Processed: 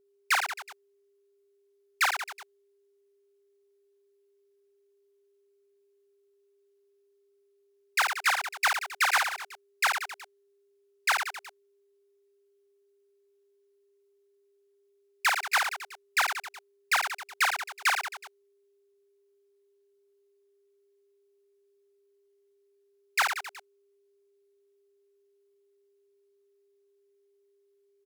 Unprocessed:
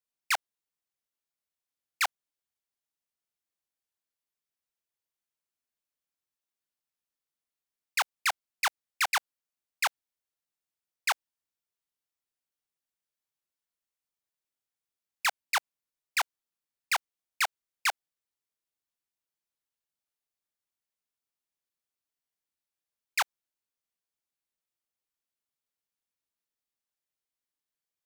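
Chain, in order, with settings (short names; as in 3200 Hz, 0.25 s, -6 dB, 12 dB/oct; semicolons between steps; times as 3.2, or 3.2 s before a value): reverse bouncing-ball echo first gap 50 ms, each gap 1.2×, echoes 5; dynamic EQ 1500 Hz, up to +5 dB, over -43 dBFS, Q 1.7; whine 400 Hz -66 dBFS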